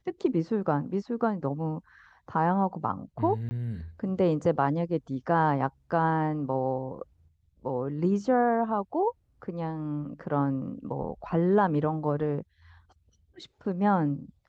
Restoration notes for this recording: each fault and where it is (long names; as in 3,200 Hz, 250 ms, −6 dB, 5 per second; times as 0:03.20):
0:03.49–0:03.51: drop-out 20 ms